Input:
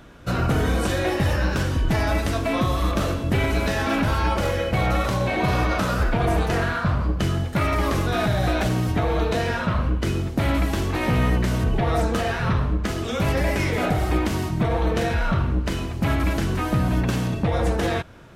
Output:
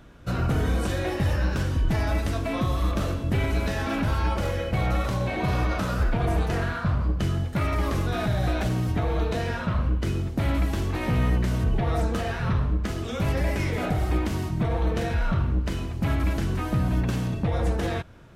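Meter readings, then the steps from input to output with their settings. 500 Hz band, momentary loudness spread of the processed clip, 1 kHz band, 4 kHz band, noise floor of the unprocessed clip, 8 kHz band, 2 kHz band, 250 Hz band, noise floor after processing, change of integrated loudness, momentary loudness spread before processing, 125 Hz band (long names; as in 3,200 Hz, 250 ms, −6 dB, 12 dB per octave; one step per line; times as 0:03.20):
−5.5 dB, 3 LU, −6.0 dB, −6.0 dB, −29 dBFS, −6.0 dB, −6.0 dB, −4.0 dB, −32 dBFS, −3.5 dB, 2 LU, −2.0 dB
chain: low-shelf EQ 180 Hz +5.5 dB
level −6 dB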